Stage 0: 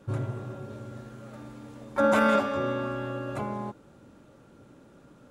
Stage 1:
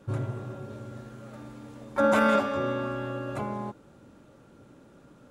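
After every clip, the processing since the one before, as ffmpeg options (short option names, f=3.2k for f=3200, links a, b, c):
-af anull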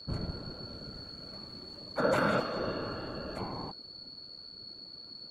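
-af "aeval=exprs='val(0)+0.0112*sin(2*PI*4400*n/s)':c=same,afftfilt=real='hypot(re,im)*cos(2*PI*random(0))':imag='hypot(re,im)*sin(2*PI*random(1))':win_size=512:overlap=0.75"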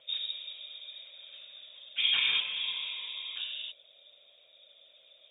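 -af "lowpass=f=3.2k:t=q:w=0.5098,lowpass=f=3.2k:t=q:w=0.6013,lowpass=f=3.2k:t=q:w=0.9,lowpass=f=3.2k:t=q:w=2.563,afreqshift=-3800"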